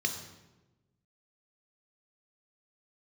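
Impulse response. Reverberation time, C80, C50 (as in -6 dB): 1.1 s, 9.5 dB, 7.5 dB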